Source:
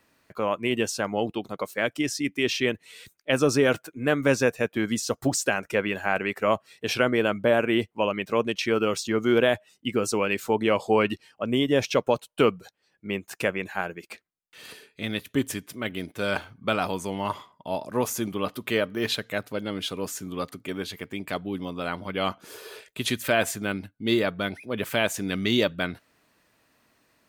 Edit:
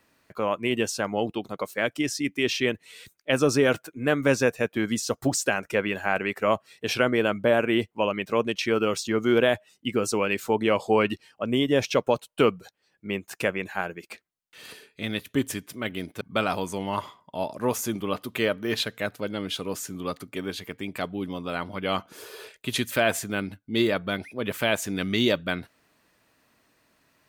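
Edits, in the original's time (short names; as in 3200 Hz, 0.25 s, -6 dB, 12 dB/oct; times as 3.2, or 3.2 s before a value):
16.21–16.53 cut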